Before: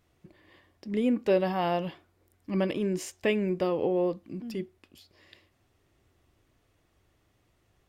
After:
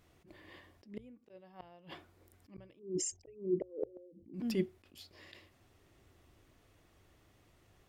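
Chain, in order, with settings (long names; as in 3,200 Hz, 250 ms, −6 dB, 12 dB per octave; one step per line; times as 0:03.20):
0:02.79–0:04.34: spectral envelope exaggerated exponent 3
gate with flip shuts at −20 dBFS, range −33 dB
mains-hum notches 60/120 Hz
level that may rise only so fast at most 160 dB per second
level +3 dB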